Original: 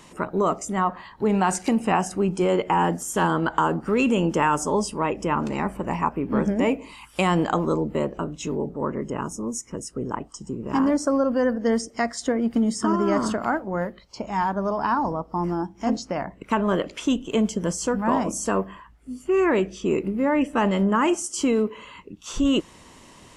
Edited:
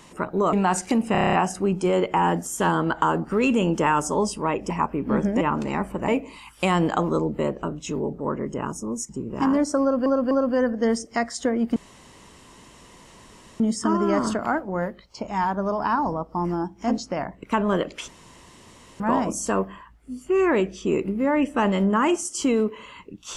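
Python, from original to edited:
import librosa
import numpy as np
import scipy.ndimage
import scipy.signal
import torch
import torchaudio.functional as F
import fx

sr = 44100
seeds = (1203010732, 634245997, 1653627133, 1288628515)

y = fx.edit(x, sr, fx.cut(start_s=0.53, length_s=0.77),
    fx.stutter(start_s=1.89, slice_s=0.03, count=8),
    fx.move(start_s=5.26, length_s=0.67, to_s=6.64),
    fx.cut(start_s=9.65, length_s=0.77),
    fx.repeat(start_s=11.14, length_s=0.25, count=3),
    fx.insert_room_tone(at_s=12.59, length_s=1.84),
    fx.room_tone_fill(start_s=17.07, length_s=0.92), tone=tone)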